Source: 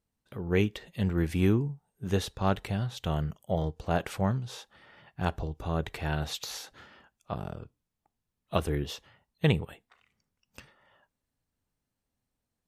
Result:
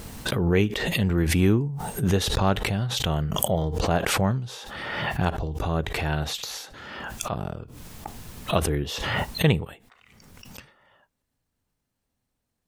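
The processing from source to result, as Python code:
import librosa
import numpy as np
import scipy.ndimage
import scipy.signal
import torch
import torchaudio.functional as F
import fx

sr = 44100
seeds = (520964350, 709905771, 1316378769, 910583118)

y = fx.pre_swell(x, sr, db_per_s=30.0)
y = y * librosa.db_to_amplitude(4.0)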